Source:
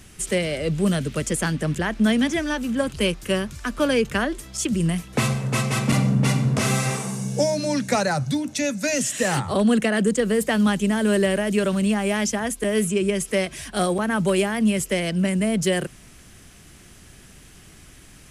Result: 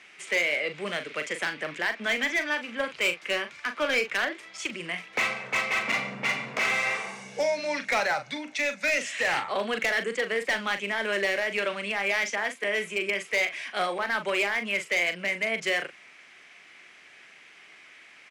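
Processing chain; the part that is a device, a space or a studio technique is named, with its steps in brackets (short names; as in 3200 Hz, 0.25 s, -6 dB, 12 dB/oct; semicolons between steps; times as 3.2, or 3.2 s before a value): megaphone (BPF 610–3800 Hz; bell 2200 Hz +11 dB 0.5 oct; hard clip -18.5 dBFS, distortion -13 dB; doubler 40 ms -9 dB); gain -2 dB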